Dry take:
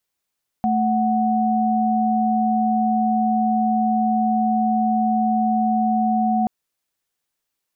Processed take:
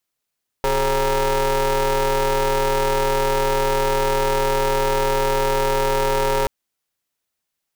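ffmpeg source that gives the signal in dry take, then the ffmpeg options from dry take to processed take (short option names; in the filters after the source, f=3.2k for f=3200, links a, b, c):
-f lavfi -i "aevalsrc='0.112*(sin(2*PI*220*t)+sin(2*PI*739.99*t))':d=5.83:s=44100"
-af "aeval=exprs='val(0)*sgn(sin(2*PI*200*n/s))':c=same"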